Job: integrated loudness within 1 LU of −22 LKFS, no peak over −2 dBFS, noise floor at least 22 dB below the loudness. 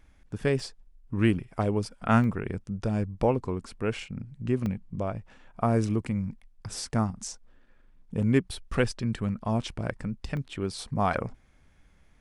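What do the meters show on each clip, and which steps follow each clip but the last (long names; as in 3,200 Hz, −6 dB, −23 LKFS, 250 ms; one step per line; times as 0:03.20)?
number of dropouts 4; longest dropout 1.5 ms; integrated loudness −29.5 LKFS; sample peak −8.5 dBFS; target loudness −22.0 LKFS
→ repair the gap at 0:00.60/0:02.24/0:04.66/0:10.37, 1.5 ms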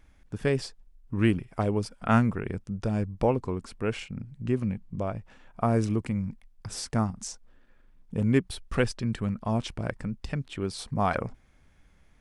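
number of dropouts 0; integrated loudness −29.5 LKFS; sample peak −8.5 dBFS; target loudness −22.0 LKFS
→ level +7.5 dB
brickwall limiter −2 dBFS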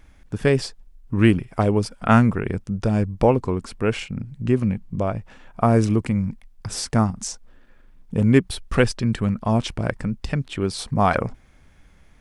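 integrated loudness −22.0 LKFS; sample peak −2.0 dBFS; background noise floor −52 dBFS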